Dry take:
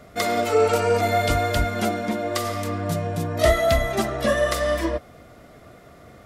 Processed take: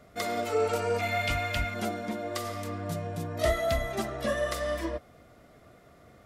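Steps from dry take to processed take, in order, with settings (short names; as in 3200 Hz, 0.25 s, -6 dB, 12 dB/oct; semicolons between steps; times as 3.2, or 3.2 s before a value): 0.99–1.74 fifteen-band EQ 400 Hz -11 dB, 2500 Hz +11 dB, 10000 Hz -3 dB; gain -8.5 dB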